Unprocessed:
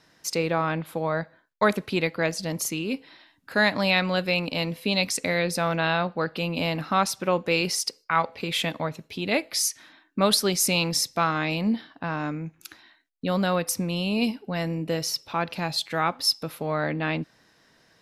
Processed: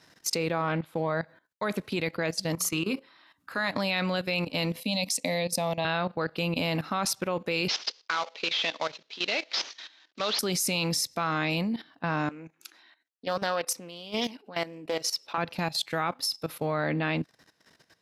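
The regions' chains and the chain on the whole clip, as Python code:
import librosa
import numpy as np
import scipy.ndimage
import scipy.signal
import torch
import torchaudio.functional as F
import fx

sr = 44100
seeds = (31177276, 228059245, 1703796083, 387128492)

y = fx.chain(x, sr, fx.high_shelf(hz=7900.0, db=-7.0),
    fx.doppler_dist(depth_ms=0.13), at=(0.62, 1.1))
y = fx.chain(y, sr, fx.peak_eq(hz=1200.0, db=11.0, octaves=0.58),
    fx.hum_notches(base_hz=60, count=10), at=(2.53, 3.68))
y = fx.chain(y, sr, fx.highpass(hz=120.0, slope=12),
    fx.fixed_phaser(hz=390.0, stages=6), at=(4.8, 5.85))
y = fx.chain(y, sr, fx.cvsd(bps=32000),
    fx.highpass(hz=430.0, slope=12),
    fx.peak_eq(hz=3600.0, db=9.5, octaves=1.2), at=(7.68, 10.39))
y = fx.chain(y, sr, fx.highpass(hz=320.0, slope=12),
    fx.high_shelf(hz=11000.0, db=-10.5),
    fx.doppler_dist(depth_ms=0.23), at=(12.29, 15.38))
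y = scipy.signal.sosfilt(scipy.signal.butter(2, 49.0, 'highpass', fs=sr, output='sos'), y)
y = fx.high_shelf(y, sr, hz=4000.0, db=3.0)
y = fx.level_steps(y, sr, step_db=15)
y = F.gain(torch.from_numpy(y), 2.0).numpy()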